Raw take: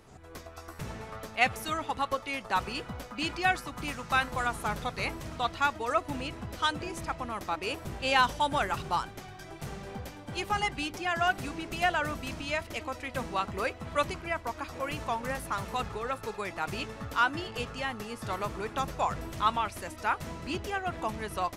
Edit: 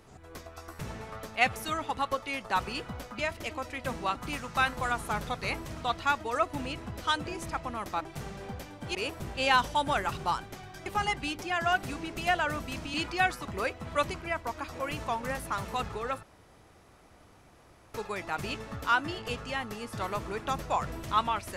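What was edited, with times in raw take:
3.19–3.70 s: swap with 12.49–13.45 s
9.51–10.41 s: move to 7.60 s
16.23 s: insert room tone 1.71 s

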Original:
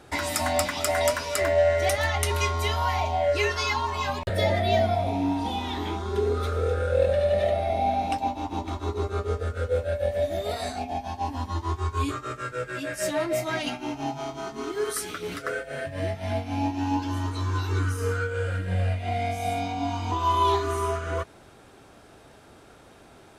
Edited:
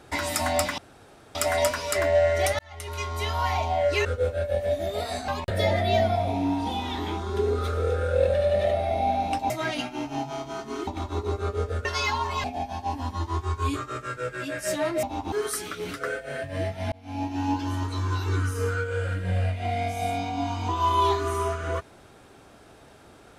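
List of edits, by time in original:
0.78 s: insert room tone 0.57 s
2.02–2.91 s: fade in
3.48–4.07 s: swap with 9.56–10.79 s
8.29–8.58 s: swap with 13.38–14.75 s
16.35–16.99 s: fade in equal-power

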